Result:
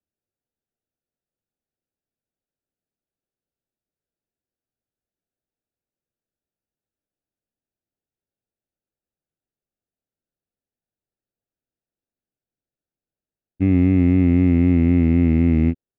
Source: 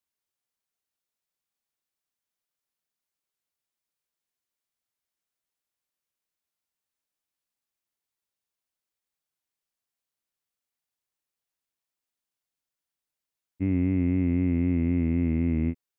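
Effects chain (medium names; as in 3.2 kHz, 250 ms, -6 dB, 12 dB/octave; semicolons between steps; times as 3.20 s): local Wiener filter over 41 samples; trim +9 dB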